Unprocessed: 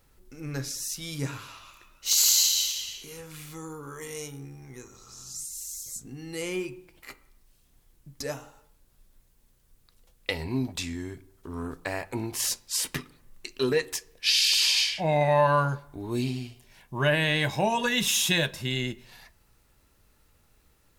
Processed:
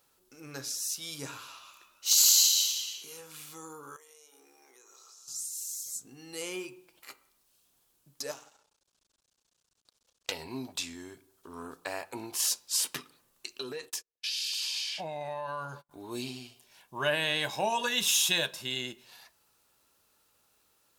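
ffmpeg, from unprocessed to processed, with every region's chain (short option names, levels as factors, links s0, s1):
-filter_complex "[0:a]asettb=1/sr,asplit=3[s0][s1][s2];[s0]atrim=end=3.964[s3];[s1]atrim=start=3.96:end=5.28,asetpts=PTS-STARTPTS,afade=t=in:d=0.004:c=qsin,afade=t=out:st=1.316:d=0.004:c=qsin,highpass=f=370:w=0.5412,highpass=f=370:w=1.3066,acompressor=threshold=0.00316:ratio=12:attack=3.2:release=140:knee=1:detection=peak[s4];[s2]atrim=start=5.276[s5];[s3][s4]acrossfade=d=0.004:c1=hsin:c2=qsin[s6];[s6][s5]acrossfade=d=0.004:c1=qsin:c2=hsin,asettb=1/sr,asplit=3[s7][s8][s9];[s7]atrim=end=8.314[s10];[s8]atrim=start=8.31:end=10.32,asetpts=PTS-STARTPTS,afade=t=in:d=0.004:c=qsin,afade=t=out:st=2.006:d=0.004:c=qsin,lowpass=f=6600:w=0.5412,lowpass=f=6600:w=1.3066,aemphasis=mode=production:type=50fm,aeval=exprs='max(val(0),0)':c=same[s11];[s9]atrim=start=10.316[s12];[s10][s11]acrossfade=d=0.004:c1=hsin:c2=qsin[s13];[s13][s12]acrossfade=d=0.004:c1=qsin:c2=hsin,asettb=1/sr,asplit=3[s14][s15][s16];[s14]atrim=end=13.604[s17];[s15]atrim=start=13.6:end=15.91,asetpts=PTS-STARTPTS,afade=t=in:d=0.004:c=qsin,afade=t=out:st=2.306:d=0.004:c=qsin,acompressor=threshold=0.0355:ratio=10:attack=3.2:release=140:knee=1:detection=peak,lowshelf=f=120:g=7.5,agate=range=0.0158:threshold=0.00708:ratio=16:release=100:detection=peak[s18];[s16]atrim=start=15.906[s19];[s17][s18]acrossfade=d=0.004:c1=hsin:c2=qsin[s20];[s20][s19]acrossfade=d=0.004:c1=qsin:c2=hsin,highpass=f=770:p=1,equalizer=f=2000:t=o:w=0.51:g=-7.5"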